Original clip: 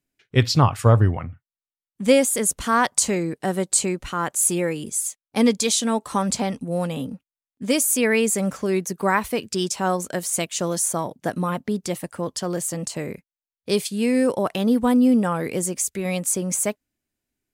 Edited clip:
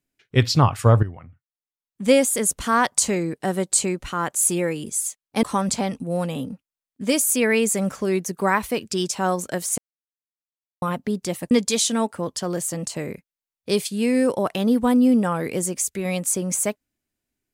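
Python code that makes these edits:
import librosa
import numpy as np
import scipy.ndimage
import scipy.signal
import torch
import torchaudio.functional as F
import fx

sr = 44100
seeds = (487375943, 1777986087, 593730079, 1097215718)

y = fx.edit(x, sr, fx.fade_in_from(start_s=1.03, length_s=1.1, curve='qua', floor_db=-13.0),
    fx.move(start_s=5.43, length_s=0.61, to_s=12.12),
    fx.silence(start_s=10.39, length_s=1.04), tone=tone)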